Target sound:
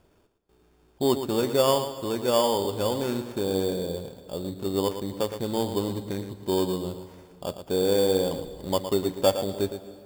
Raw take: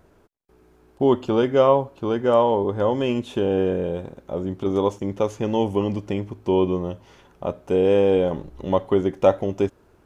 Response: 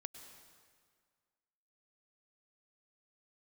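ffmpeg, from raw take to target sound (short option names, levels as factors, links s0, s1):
-filter_complex "[0:a]acrusher=samples=11:mix=1:aa=0.000001,aeval=exprs='0.708*(cos(1*acos(clip(val(0)/0.708,-1,1)))-cos(1*PI/2))+0.0141*(cos(7*acos(clip(val(0)/0.708,-1,1)))-cos(7*PI/2))':c=same,asplit=2[s0][s1];[1:a]atrim=start_sample=2205,adelay=114[s2];[s1][s2]afir=irnorm=-1:irlink=0,volume=0.596[s3];[s0][s3]amix=inputs=2:normalize=0,volume=0.562"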